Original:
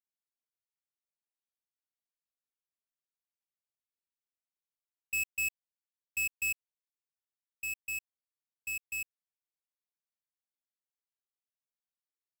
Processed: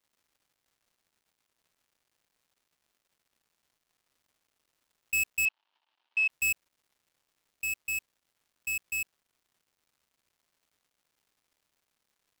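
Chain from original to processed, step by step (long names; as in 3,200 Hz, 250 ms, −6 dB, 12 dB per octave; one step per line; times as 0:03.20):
surface crackle 380 per second −66 dBFS
0:05.45–0:06.30: loudspeaker in its box 450–4,200 Hz, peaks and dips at 480 Hz −8 dB, 900 Hz +9 dB, 2,000 Hz −3 dB, 3,000 Hz +6 dB
level +4.5 dB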